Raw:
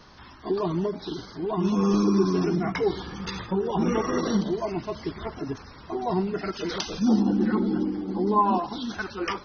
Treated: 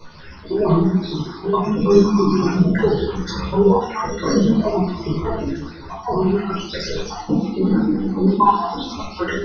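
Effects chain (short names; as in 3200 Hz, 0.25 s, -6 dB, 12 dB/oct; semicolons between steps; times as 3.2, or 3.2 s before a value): random spectral dropouts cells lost 56%; shoebox room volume 1000 m³, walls furnished, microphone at 4.9 m; ensemble effect; gain +7.5 dB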